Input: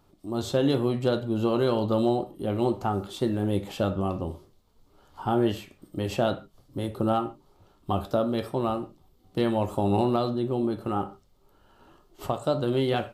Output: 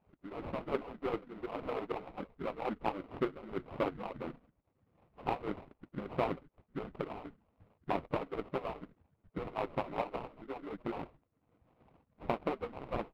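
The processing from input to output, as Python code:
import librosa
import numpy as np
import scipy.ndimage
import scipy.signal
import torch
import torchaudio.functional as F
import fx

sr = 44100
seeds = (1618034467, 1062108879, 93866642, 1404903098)

y = fx.hpss_only(x, sr, part='percussive')
y = fx.sample_hold(y, sr, seeds[0], rate_hz=1700.0, jitter_pct=20)
y = fx.air_absorb(y, sr, metres=490.0)
y = y * librosa.db_to_amplitude(-2.5)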